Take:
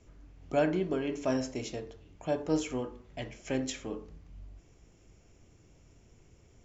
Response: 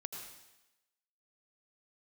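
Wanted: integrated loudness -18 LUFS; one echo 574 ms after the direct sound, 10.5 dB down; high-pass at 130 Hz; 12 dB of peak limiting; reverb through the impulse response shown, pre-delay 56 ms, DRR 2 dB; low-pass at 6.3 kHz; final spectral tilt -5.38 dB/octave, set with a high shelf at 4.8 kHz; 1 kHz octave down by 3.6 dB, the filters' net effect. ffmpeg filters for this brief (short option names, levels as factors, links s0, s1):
-filter_complex "[0:a]highpass=130,lowpass=6300,equalizer=f=1000:t=o:g=-5.5,highshelf=f=4800:g=-7.5,alimiter=level_in=1.78:limit=0.0631:level=0:latency=1,volume=0.562,aecho=1:1:574:0.299,asplit=2[s0][s1];[1:a]atrim=start_sample=2205,adelay=56[s2];[s1][s2]afir=irnorm=-1:irlink=0,volume=1[s3];[s0][s3]amix=inputs=2:normalize=0,volume=10.6"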